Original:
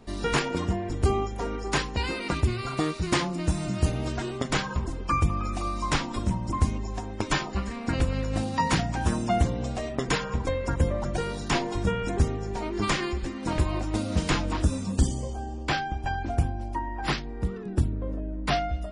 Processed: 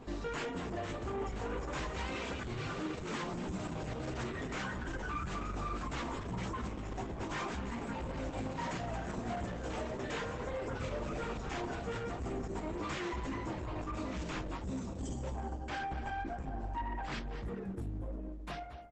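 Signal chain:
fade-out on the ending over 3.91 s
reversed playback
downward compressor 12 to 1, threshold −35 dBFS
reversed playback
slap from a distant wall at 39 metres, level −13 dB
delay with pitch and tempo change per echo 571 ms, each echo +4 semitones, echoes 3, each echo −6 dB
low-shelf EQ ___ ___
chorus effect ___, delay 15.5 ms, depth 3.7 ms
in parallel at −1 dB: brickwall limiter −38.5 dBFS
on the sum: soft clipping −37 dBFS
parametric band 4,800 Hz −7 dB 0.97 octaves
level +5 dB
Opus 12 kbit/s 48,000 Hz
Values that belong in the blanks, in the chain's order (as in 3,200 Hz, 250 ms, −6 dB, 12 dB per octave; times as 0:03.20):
170 Hz, −4.5 dB, 1.7 Hz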